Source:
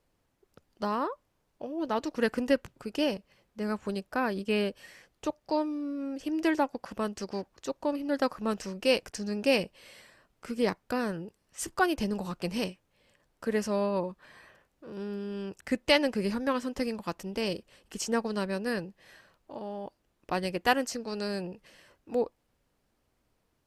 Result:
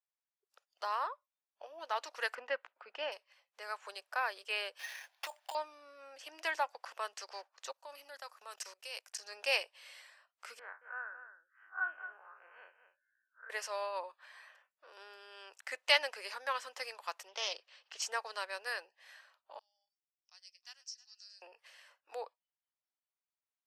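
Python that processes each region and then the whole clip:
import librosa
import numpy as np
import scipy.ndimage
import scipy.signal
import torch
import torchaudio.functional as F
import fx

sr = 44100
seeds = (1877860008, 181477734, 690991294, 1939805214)

y = fx.chain(x, sr, fx.lowpass(hz=2300.0, slope=12),
    fx.peak_eq(hz=210.0, db=7.5, octaves=0.64), at=(2.35, 3.12))
y = fx.chain(y, sr, fx.comb(ms=1.2, depth=0.64),
    fx.over_compress(threshold_db=-35.0, ratio=-1.0),
    fx.sample_hold(seeds[0], rate_hz=8000.0, jitter_pct=0), at=(4.79, 5.55))
y = fx.chain(y, sr, fx.high_shelf(hz=6500.0, db=12.0),
    fx.level_steps(step_db=19), at=(7.72, 9.25))
y = fx.chain(y, sr, fx.spec_blur(span_ms=92.0),
    fx.ladder_lowpass(hz=1600.0, resonance_pct=80),
    fx.echo_single(ms=222, db=-10.5), at=(10.59, 13.5))
y = fx.chain(y, sr, fx.high_shelf_res(hz=7300.0, db=-13.5, q=1.5),
    fx.doppler_dist(depth_ms=0.14), at=(17.28, 18.02))
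y = fx.chain(y, sr, fx.bandpass_q(hz=5500.0, q=10.0),
    fx.echo_heads(ms=105, heads='first and third', feedback_pct=54, wet_db=-19.0), at=(19.59, 21.42))
y = fx.noise_reduce_blind(y, sr, reduce_db=21)
y = scipy.signal.sosfilt(scipy.signal.bessel(6, 1000.0, 'highpass', norm='mag', fs=sr, output='sos'), y)
y = fx.high_shelf(y, sr, hz=9000.0, db=-7.5)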